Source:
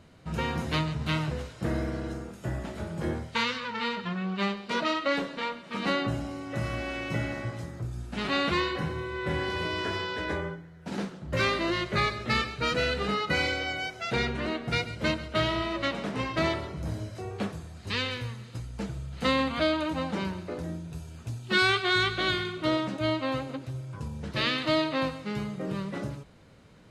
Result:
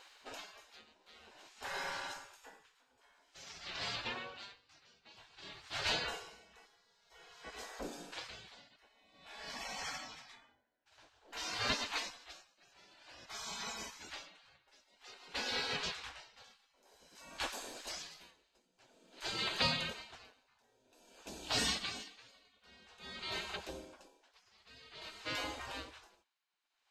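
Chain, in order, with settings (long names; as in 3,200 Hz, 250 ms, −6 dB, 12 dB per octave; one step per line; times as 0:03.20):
thirty-one-band graphic EQ 1,250 Hz −9 dB, 2,000 Hz −6 dB, 10,000 Hz −10 dB
gate on every frequency bin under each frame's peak −20 dB weak
0:16.44–0:18.31: high-shelf EQ 6,800 Hz +7.5 dB
tremolo with a sine in dB 0.51 Hz, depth 30 dB
level +8 dB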